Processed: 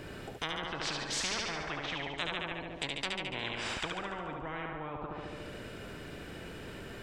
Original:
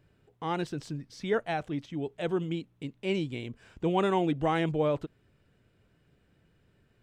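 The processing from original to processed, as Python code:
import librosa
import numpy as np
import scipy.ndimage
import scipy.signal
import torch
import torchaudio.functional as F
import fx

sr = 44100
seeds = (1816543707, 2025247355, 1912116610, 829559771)

y = fx.env_lowpass_down(x, sr, base_hz=370.0, full_db=-27.0)
y = fx.echo_thinned(y, sr, ms=72, feedback_pct=61, hz=160.0, wet_db=-6.0)
y = fx.spectral_comp(y, sr, ratio=10.0)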